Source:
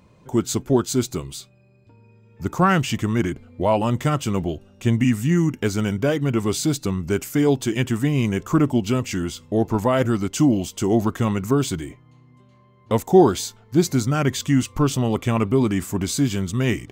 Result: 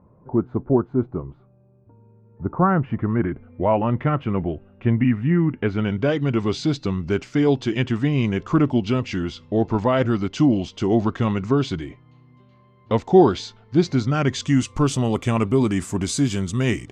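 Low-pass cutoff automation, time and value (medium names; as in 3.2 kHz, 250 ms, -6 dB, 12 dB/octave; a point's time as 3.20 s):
low-pass 24 dB/octave
2.49 s 1.2 kHz
3.62 s 2.3 kHz
5.52 s 2.3 kHz
6.13 s 4.8 kHz
14.04 s 4.8 kHz
14.87 s 10 kHz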